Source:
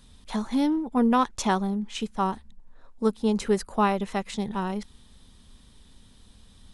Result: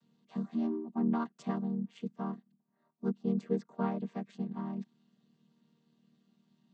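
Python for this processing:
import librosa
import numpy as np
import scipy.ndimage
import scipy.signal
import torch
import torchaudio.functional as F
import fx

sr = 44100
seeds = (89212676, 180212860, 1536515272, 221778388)

y = fx.chord_vocoder(x, sr, chord='major triad', root=51)
y = F.gain(torch.from_numpy(y), -8.0).numpy()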